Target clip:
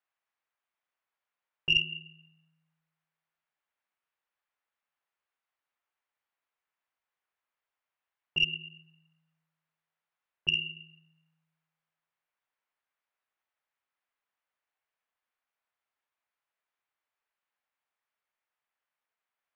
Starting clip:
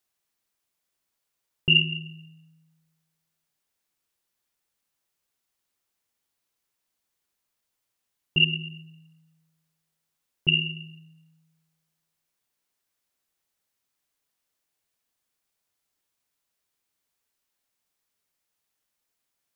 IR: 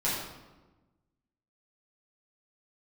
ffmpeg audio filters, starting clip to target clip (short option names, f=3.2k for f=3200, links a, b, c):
-filter_complex "[0:a]aeval=exprs='0.447*(cos(1*acos(clip(val(0)/0.447,-1,1)))-cos(1*PI/2))+0.178*(cos(2*acos(clip(val(0)/0.447,-1,1)))-cos(2*PI/2))+0.0178*(cos(4*acos(clip(val(0)/0.447,-1,1)))-cos(4*PI/2))+0.00708*(cos(8*acos(clip(val(0)/0.447,-1,1)))-cos(8*PI/2))':c=same,acrossover=split=590 2700:gain=0.158 1 0.0631[a][b][c];[a][b][c]amix=inputs=3:normalize=0"